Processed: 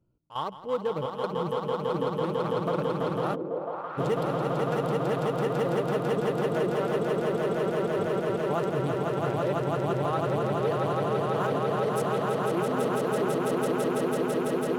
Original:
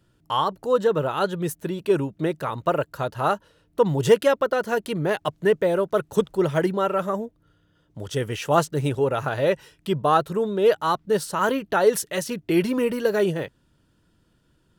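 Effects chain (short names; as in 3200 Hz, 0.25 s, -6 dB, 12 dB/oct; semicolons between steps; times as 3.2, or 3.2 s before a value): Wiener smoothing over 25 samples; step gate "x.xxxx.xx..xxxx" 85 bpm -12 dB; swelling echo 0.166 s, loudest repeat 8, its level -4.5 dB; limiter -10 dBFS, peak gain reduction 6 dB; 3.34–3.97 band-pass 270 Hz -> 1600 Hz, Q 1.7; gain -8 dB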